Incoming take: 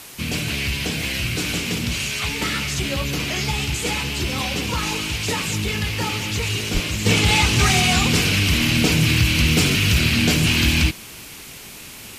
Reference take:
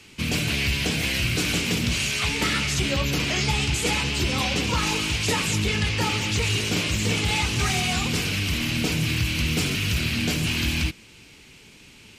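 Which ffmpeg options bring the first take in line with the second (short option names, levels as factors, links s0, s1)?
-filter_complex "[0:a]asplit=3[s0][s1][s2];[s0]afade=t=out:st=6.73:d=0.02[s3];[s1]highpass=f=140:w=0.5412,highpass=f=140:w=1.3066,afade=t=in:st=6.73:d=0.02,afade=t=out:st=6.85:d=0.02[s4];[s2]afade=t=in:st=6.85:d=0.02[s5];[s3][s4][s5]amix=inputs=3:normalize=0,afwtdn=0.011,asetnsamples=n=441:p=0,asendcmd='7.06 volume volume -7dB',volume=1"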